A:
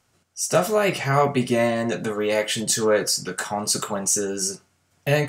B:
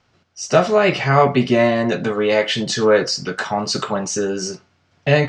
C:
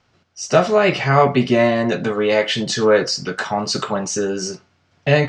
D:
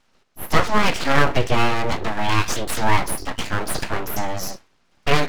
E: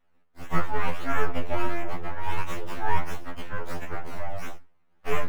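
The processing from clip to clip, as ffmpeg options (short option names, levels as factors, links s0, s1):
-af "lowpass=f=5100:w=0.5412,lowpass=f=5100:w=1.3066,volume=1.88"
-af anull
-af "aeval=exprs='abs(val(0))':c=same"
-filter_complex "[0:a]flanger=delay=5.3:depth=8.5:regen=83:speed=1.7:shape=triangular,acrossover=split=120|1600|2700[s0][s1][s2][s3];[s3]acrusher=samples=18:mix=1:aa=0.000001:lfo=1:lforange=18:lforate=1.5[s4];[s0][s1][s2][s4]amix=inputs=4:normalize=0,afftfilt=real='re*2*eq(mod(b,4),0)':imag='im*2*eq(mod(b,4),0)':win_size=2048:overlap=0.75,volume=0.708"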